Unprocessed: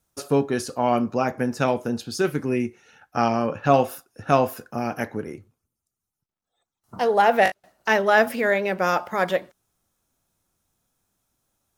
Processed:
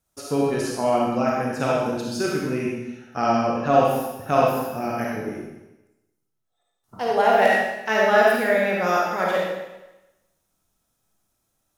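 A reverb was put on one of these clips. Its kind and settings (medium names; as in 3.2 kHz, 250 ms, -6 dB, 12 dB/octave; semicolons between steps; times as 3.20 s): algorithmic reverb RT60 1 s, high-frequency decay 1×, pre-delay 10 ms, DRR -4 dB; trim -4.5 dB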